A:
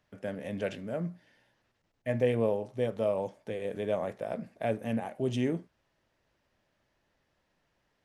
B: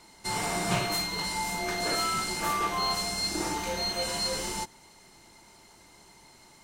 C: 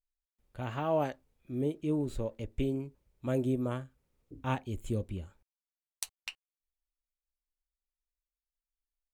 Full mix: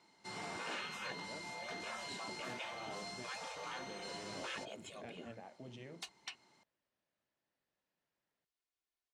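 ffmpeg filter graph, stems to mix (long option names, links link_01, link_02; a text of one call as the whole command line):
ffmpeg -i stem1.wav -i stem2.wav -i stem3.wav -filter_complex "[0:a]adelay=400,volume=-15dB[link_01];[1:a]volume=-12.5dB[link_02];[2:a]aecho=1:1:2.8:0.66,volume=2dB[link_03];[link_01][link_02][link_03]amix=inputs=3:normalize=0,afftfilt=real='re*lt(hypot(re,im),0.0447)':imag='im*lt(hypot(re,im),0.0447)':win_size=1024:overlap=0.75,volume=34dB,asoftclip=hard,volume=-34dB,highpass=140,lowpass=5300" out.wav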